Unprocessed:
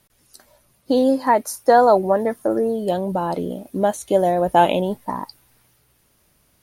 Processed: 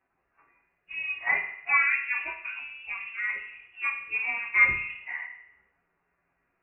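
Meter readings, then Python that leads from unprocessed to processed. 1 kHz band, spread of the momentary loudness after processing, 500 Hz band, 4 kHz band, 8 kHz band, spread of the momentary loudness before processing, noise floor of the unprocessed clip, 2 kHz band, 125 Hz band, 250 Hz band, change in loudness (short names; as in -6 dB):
-18.5 dB, 15 LU, -35.0 dB, under -10 dB, under -40 dB, 13 LU, -62 dBFS, +8.5 dB, under -20 dB, under -35 dB, -7.5 dB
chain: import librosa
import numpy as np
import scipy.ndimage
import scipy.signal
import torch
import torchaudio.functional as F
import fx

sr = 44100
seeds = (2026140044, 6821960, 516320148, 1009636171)

y = fx.partial_stretch(x, sr, pct=110)
y = scipy.signal.sosfilt(scipy.signal.butter(2, 1400.0, 'highpass', fs=sr, output='sos'), y)
y = fx.rev_fdn(y, sr, rt60_s=0.77, lf_ratio=1.35, hf_ratio=0.75, size_ms=15.0, drr_db=2.0)
y = fx.freq_invert(y, sr, carrier_hz=3100)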